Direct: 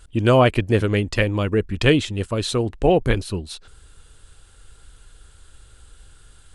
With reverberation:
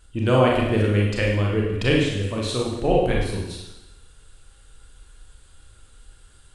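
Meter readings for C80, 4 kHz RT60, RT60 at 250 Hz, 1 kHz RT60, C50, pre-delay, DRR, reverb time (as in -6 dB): 4.5 dB, 0.95 s, 0.95 s, 0.95 s, 1.5 dB, 29 ms, -2.5 dB, 0.95 s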